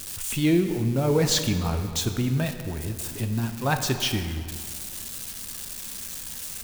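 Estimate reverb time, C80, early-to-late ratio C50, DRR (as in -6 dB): 2.2 s, 9.0 dB, 8.0 dB, 6.0 dB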